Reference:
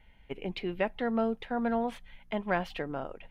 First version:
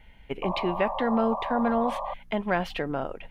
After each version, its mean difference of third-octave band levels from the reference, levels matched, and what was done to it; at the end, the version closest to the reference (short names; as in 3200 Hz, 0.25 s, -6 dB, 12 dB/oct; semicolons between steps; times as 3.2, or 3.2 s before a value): 2.5 dB: in parallel at +1 dB: limiter -25.5 dBFS, peak gain reduction 9.5 dB; on the sum: painted sound noise, 0.42–2.14, 530–1200 Hz -32 dBFS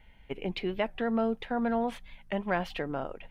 1.5 dB: in parallel at -1.5 dB: limiter -24.5 dBFS, peak gain reduction 8.5 dB; on the sum: record warp 45 rpm, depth 160 cents; gain -3 dB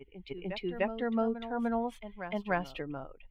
5.0 dB: per-bin expansion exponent 1.5; on a send: reverse echo 0.299 s -10.5 dB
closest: second